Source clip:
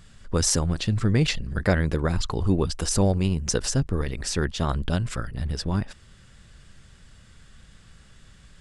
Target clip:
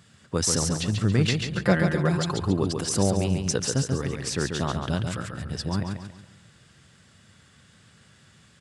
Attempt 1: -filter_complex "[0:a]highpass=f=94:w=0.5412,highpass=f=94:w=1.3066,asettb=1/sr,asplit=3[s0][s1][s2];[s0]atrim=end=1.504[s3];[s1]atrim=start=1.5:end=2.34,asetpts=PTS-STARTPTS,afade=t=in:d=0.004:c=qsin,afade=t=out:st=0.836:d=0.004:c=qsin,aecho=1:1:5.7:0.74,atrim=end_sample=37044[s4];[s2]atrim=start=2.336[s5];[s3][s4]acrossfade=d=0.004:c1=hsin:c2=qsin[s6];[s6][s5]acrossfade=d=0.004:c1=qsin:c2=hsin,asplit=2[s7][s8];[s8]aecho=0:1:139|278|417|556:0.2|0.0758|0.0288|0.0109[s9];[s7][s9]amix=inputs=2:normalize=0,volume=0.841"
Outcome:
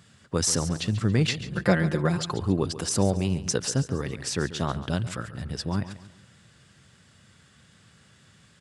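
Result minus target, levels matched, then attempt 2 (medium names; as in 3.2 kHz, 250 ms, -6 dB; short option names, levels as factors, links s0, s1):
echo-to-direct -9 dB
-filter_complex "[0:a]highpass=f=94:w=0.5412,highpass=f=94:w=1.3066,asettb=1/sr,asplit=3[s0][s1][s2];[s0]atrim=end=1.504[s3];[s1]atrim=start=1.5:end=2.34,asetpts=PTS-STARTPTS,afade=t=in:d=0.004:c=qsin,afade=t=out:st=0.836:d=0.004:c=qsin,aecho=1:1:5.7:0.74,atrim=end_sample=37044[s4];[s2]atrim=start=2.336[s5];[s3][s4]acrossfade=d=0.004:c1=hsin:c2=qsin[s6];[s6][s5]acrossfade=d=0.004:c1=qsin:c2=hsin,asplit=2[s7][s8];[s8]aecho=0:1:139|278|417|556|695:0.562|0.214|0.0812|0.0309|0.0117[s9];[s7][s9]amix=inputs=2:normalize=0,volume=0.841"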